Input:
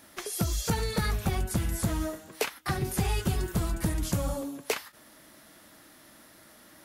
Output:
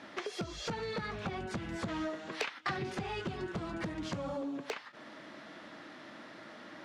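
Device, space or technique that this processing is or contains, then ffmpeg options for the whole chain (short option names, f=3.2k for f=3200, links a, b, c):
AM radio: -filter_complex "[0:a]highpass=170,lowpass=3.3k,lowpass=7.6k,acompressor=threshold=-41dB:ratio=6,asoftclip=type=tanh:threshold=-34dB,asettb=1/sr,asplit=3[a][b][c];[a]atrim=end=1.884[d];[b]atrim=start=1.88:end=2.95,asetpts=PTS-STARTPTS,afade=t=in:d=0.004:c=qsin,afade=t=out:st=1.066:d=0.004:c=qsin,equalizer=f=4.1k:w=0.32:g=6[e];[c]atrim=start=2.946[f];[d][e]acrossfade=d=0.004:c1=hsin:c2=qsin[g];[g][f]acrossfade=d=0.004:c1=qsin:c2=hsin,volume=7dB"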